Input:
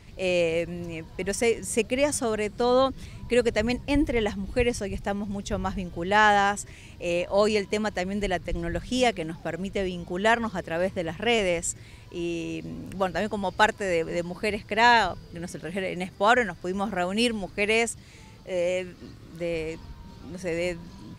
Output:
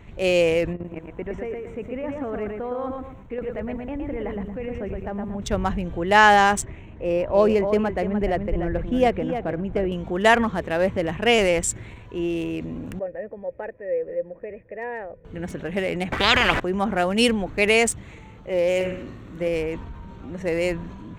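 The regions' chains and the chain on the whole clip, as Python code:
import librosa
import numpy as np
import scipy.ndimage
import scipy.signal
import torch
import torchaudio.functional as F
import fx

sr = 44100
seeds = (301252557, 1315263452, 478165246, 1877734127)

y = fx.chain(x, sr, fx.level_steps(step_db=17),
    fx.lowpass(hz=1900.0, slope=12),
    fx.echo_crushed(ms=115, feedback_pct=35, bits=10, wet_db=-4.5), at=(0.73, 5.42))
y = fx.chain(y, sr, fx.lowpass(hz=1100.0, slope=6),
    fx.echo_single(ms=297, db=-9.0), at=(6.65, 9.92))
y = fx.chain(y, sr, fx.formant_cascade(vowel='e'),
    fx.peak_eq(hz=2500.0, db=-6.5, octaves=2.5), at=(12.99, 15.25))
y = fx.chain(y, sr, fx.lowpass(hz=2900.0, slope=24),
    fx.spectral_comp(ratio=10.0), at=(16.12, 16.6))
y = fx.chain(y, sr, fx.high_shelf(hz=4900.0, db=4.0),
    fx.doubler(ms=16.0, db=-13),
    fx.room_flutter(wall_m=9.6, rt60_s=0.53), at=(18.75, 19.48))
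y = fx.wiener(y, sr, points=9)
y = fx.peak_eq(y, sr, hz=130.0, db=-3.5, octaves=0.91)
y = fx.transient(y, sr, attack_db=1, sustain_db=5)
y = F.gain(torch.from_numpy(y), 5.0).numpy()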